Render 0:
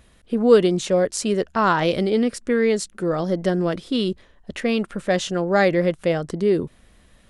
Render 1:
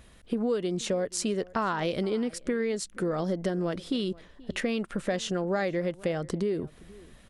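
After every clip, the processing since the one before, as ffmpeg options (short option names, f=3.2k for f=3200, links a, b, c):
-filter_complex "[0:a]acompressor=threshold=-26dB:ratio=6,asplit=2[a][b];[b]adelay=478.1,volume=-22dB,highshelf=f=4k:g=-10.8[c];[a][c]amix=inputs=2:normalize=0"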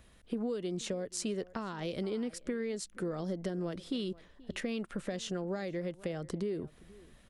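-filter_complex "[0:a]acrossover=split=430|3000[a][b][c];[b]acompressor=threshold=-34dB:ratio=6[d];[a][d][c]amix=inputs=3:normalize=0,volume=-6dB"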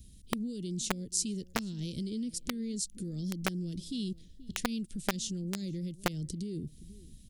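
-filter_complex "[0:a]acrossover=split=280|3900[a][b][c];[a]alimiter=level_in=14.5dB:limit=-24dB:level=0:latency=1:release=161,volume=-14.5dB[d];[b]acrusher=bits=4:mix=0:aa=0.000001[e];[d][e][c]amix=inputs=3:normalize=0,volume=8.5dB"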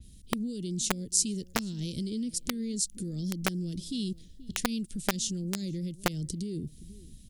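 -af "adynamicequalizer=threshold=0.00355:dfrequency=4700:dqfactor=0.7:tfrequency=4700:tqfactor=0.7:attack=5:release=100:ratio=0.375:range=2:mode=boostabove:tftype=highshelf,volume=2.5dB"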